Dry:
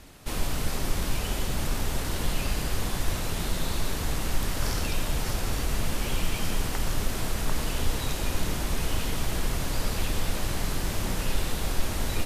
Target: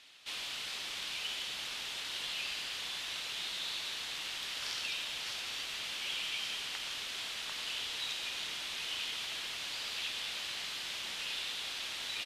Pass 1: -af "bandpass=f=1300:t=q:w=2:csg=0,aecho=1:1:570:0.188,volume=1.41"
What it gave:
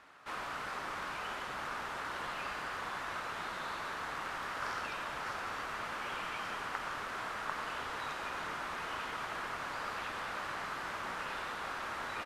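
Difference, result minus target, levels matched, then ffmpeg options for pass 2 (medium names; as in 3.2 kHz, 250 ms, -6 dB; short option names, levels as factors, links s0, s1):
1 kHz band +15.0 dB
-af "bandpass=f=3300:t=q:w=2:csg=0,aecho=1:1:570:0.188,volume=1.41"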